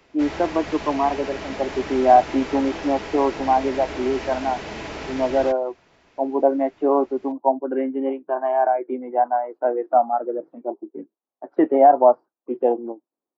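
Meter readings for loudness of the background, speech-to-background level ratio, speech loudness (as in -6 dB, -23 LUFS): -33.0 LUFS, 11.5 dB, -21.5 LUFS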